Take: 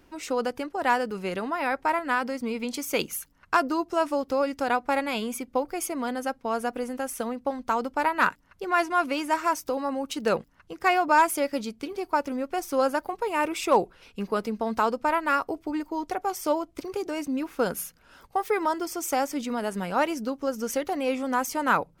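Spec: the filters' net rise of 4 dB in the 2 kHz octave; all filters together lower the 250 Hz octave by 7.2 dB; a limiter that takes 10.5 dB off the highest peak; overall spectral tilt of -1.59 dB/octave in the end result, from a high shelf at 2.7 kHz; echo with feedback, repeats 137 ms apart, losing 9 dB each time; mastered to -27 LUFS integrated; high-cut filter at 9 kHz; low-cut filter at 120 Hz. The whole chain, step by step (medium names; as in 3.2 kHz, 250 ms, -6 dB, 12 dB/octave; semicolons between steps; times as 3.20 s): high-pass 120 Hz; low-pass 9 kHz; peaking EQ 250 Hz -9 dB; peaking EQ 2 kHz +3.5 dB; treble shelf 2.7 kHz +5.5 dB; peak limiter -16 dBFS; feedback delay 137 ms, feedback 35%, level -9 dB; trim +2 dB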